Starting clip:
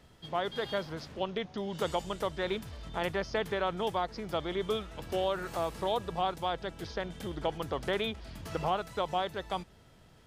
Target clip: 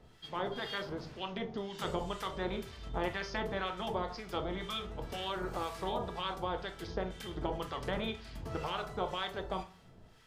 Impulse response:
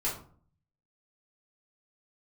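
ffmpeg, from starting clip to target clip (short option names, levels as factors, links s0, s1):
-filter_complex "[0:a]asplit=2[s0][s1];[1:a]atrim=start_sample=2205,lowpass=7100,highshelf=f=4700:g=3[s2];[s1][s2]afir=irnorm=-1:irlink=0,volume=0.355[s3];[s0][s3]amix=inputs=2:normalize=0,afftfilt=real='re*lt(hypot(re,im),0.282)':imag='im*lt(hypot(re,im),0.282)':win_size=1024:overlap=0.75,acrossover=split=1100[s4][s5];[s4]aeval=exprs='val(0)*(1-0.7/2+0.7/2*cos(2*PI*2*n/s))':c=same[s6];[s5]aeval=exprs='val(0)*(1-0.7/2-0.7/2*cos(2*PI*2*n/s))':c=same[s7];[s6][s7]amix=inputs=2:normalize=0,volume=0.891"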